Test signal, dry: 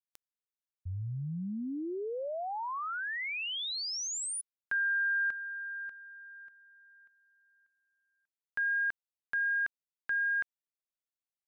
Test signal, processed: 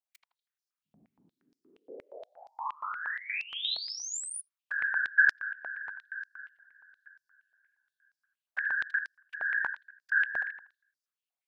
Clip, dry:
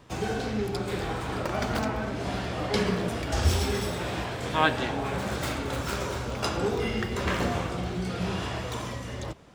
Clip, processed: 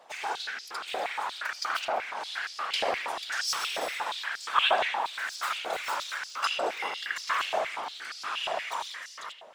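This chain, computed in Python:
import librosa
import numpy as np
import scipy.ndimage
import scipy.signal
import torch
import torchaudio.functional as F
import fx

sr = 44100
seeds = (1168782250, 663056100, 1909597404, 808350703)

y = fx.whisperise(x, sr, seeds[0])
y = fx.echo_bbd(y, sr, ms=80, stages=2048, feedback_pct=32, wet_db=-6.0)
y = fx.filter_held_highpass(y, sr, hz=8.5, low_hz=690.0, high_hz=5000.0)
y = y * 10.0 ** (-3.0 / 20.0)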